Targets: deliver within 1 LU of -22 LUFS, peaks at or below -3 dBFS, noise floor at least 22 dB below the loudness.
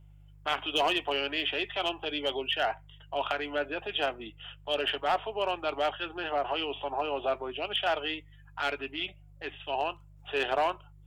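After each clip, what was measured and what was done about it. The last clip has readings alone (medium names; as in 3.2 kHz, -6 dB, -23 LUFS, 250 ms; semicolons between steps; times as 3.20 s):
clipped samples 0.3%; clipping level -20.0 dBFS; hum 50 Hz; highest harmonic 150 Hz; hum level -52 dBFS; loudness -31.5 LUFS; peak level -20.0 dBFS; loudness target -22.0 LUFS
-> clip repair -20 dBFS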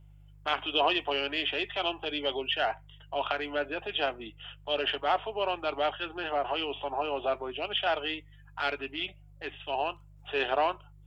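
clipped samples 0.0%; hum 50 Hz; highest harmonic 150 Hz; hum level -51 dBFS
-> de-hum 50 Hz, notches 3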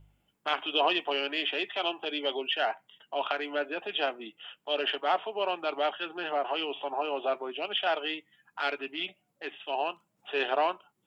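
hum not found; loudness -31.0 LUFS; peak level -12.5 dBFS; loudness target -22.0 LUFS
-> trim +9 dB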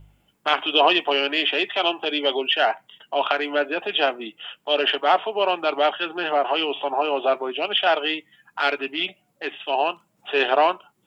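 loudness -22.0 LUFS; peak level -3.5 dBFS; noise floor -67 dBFS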